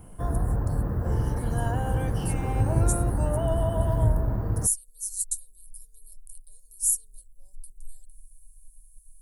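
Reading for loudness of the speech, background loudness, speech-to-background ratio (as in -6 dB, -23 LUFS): -28.5 LUFS, -27.0 LUFS, -1.5 dB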